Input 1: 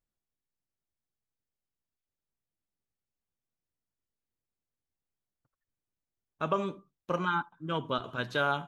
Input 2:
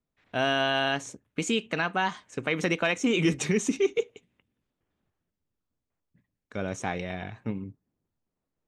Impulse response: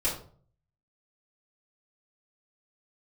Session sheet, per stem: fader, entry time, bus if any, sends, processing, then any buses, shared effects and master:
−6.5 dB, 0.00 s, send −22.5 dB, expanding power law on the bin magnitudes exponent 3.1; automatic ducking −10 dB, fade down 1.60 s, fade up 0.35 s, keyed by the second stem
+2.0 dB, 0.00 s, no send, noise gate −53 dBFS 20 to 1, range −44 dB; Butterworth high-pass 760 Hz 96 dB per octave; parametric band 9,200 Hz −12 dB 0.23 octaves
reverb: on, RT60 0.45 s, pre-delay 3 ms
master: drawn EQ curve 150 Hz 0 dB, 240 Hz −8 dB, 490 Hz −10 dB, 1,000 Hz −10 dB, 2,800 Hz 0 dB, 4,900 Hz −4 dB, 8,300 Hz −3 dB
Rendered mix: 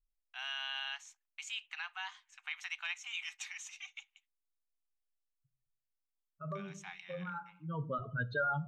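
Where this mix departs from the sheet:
stem 1 −6.5 dB → +3.0 dB
stem 2 +2.0 dB → −8.0 dB

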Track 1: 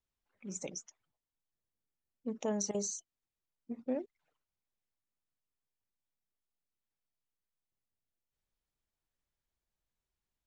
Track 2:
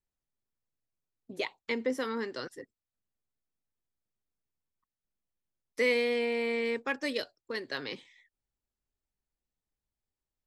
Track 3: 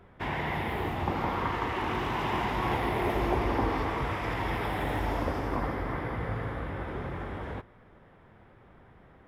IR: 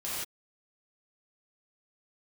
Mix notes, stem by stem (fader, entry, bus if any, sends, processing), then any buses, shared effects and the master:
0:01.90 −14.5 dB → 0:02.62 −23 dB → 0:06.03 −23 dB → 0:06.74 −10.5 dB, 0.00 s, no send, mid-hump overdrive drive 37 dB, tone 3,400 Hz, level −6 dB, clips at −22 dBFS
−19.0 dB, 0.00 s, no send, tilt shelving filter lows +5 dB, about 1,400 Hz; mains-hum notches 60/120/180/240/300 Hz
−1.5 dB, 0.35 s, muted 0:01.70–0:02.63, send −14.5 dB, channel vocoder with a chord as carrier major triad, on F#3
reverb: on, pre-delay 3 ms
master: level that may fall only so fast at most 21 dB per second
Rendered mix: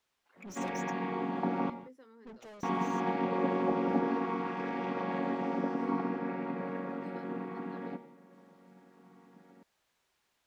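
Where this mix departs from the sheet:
stem 2 −19.0 dB → −26.5 dB
master: missing level that may fall only so fast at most 21 dB per second

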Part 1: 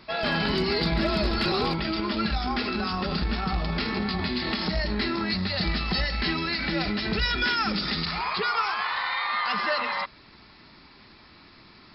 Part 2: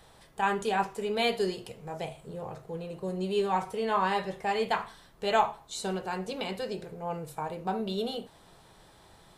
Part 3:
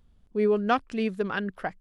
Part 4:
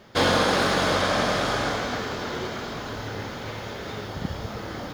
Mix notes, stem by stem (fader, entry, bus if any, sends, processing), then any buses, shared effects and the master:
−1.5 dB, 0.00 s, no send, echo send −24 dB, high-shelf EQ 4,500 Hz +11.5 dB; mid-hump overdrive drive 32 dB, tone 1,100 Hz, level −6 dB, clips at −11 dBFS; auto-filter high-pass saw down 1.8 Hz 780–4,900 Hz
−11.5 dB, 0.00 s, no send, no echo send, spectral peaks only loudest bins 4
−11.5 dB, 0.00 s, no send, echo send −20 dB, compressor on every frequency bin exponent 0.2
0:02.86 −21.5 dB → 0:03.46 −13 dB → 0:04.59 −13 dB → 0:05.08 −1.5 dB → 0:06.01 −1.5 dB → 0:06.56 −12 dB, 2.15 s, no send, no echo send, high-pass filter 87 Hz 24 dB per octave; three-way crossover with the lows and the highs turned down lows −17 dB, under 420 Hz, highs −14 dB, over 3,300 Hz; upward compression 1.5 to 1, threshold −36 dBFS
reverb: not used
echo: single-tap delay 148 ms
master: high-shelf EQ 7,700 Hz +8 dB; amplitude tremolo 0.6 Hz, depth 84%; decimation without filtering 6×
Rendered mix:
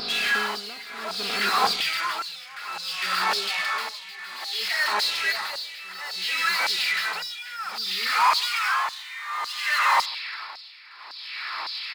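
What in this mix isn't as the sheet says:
stem 4 −21.5 dB → −29.0 dB
master: missing decimation without filtering 6×

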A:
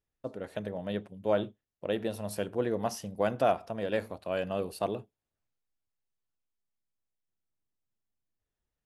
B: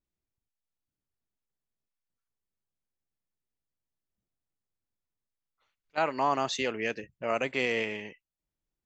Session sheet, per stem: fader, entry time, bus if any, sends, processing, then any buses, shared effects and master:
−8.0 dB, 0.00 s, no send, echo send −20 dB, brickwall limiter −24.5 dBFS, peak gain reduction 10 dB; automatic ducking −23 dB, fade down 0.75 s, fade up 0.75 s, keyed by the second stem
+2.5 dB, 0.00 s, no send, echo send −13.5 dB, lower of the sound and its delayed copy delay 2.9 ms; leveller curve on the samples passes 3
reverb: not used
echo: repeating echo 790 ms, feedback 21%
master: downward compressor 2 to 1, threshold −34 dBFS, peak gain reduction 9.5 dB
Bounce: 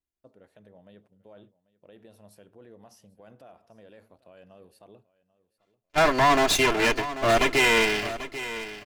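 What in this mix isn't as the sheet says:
stem A −8.0 dB → −16.0 dB
master: missing downward compressor 2 to 1, threshold −34 dBFS, peak gain reduction 9.5 dB

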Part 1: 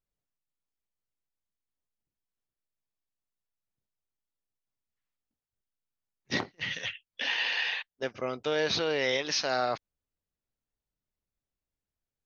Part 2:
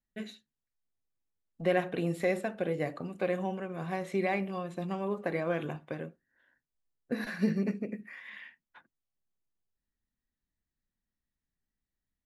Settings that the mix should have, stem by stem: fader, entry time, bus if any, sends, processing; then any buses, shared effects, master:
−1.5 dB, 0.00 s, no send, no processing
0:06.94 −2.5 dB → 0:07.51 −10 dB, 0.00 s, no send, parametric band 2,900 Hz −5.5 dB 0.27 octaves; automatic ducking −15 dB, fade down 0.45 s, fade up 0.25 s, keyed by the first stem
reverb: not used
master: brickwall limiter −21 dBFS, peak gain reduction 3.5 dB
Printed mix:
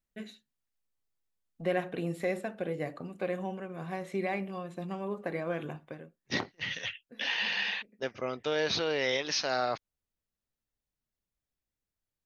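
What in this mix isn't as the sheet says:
stem 2: missing parametric band 2,900 Hz −5.5 dB 0.27 octaves
master: missing brickwall limiter −21 dBFS, peak gain reduction 3.5 dB

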